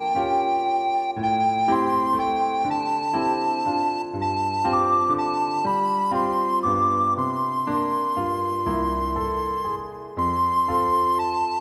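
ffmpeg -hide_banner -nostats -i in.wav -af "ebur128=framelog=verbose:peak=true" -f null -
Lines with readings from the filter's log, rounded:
Integrated loudness:
  I:         -22.7 LUFS
  Threshold: -32.8 LUFS
Loudness range:
  LRA:         2.4 LU
  Threshold: -42.9 LUFS
  LRA low:   -24.2 LUFS
  LRA high:  -21.9 LUFS
True peak:
  Peak:       -9.2 dBFS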